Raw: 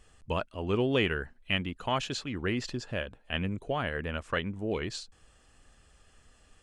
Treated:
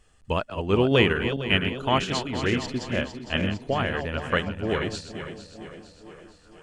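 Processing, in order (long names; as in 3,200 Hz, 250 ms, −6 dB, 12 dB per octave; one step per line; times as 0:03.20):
feedback delay that plays each chunk backwards 228 ms, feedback 71%, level −7 dB
echo through a band-pass that steps 463 ms, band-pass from 160 Hz, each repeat 0.7 octaves, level −8 dB
expander for the loud parts 1.5 to 1, over −42 dBFS
level +8 dB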